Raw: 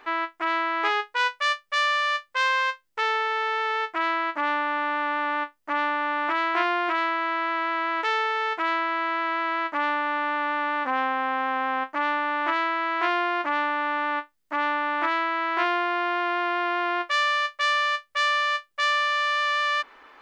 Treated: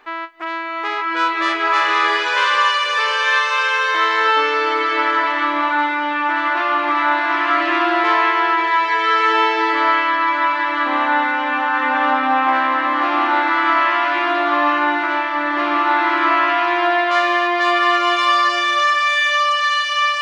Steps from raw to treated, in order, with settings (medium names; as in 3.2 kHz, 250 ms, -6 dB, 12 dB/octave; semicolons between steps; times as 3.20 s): swelling reverb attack 1280 ms, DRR -8 dB